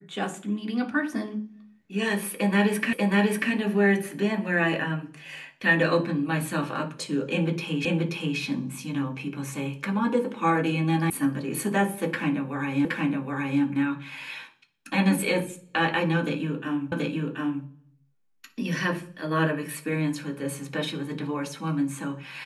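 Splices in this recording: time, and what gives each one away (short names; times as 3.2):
2.93 repeat of the last 0.59 s
7.85 repeat of the last 0.53 s
11.1 sound cut off
12.85 repeat of the last 0.77 s
16.92 repeat of the last 0.73 s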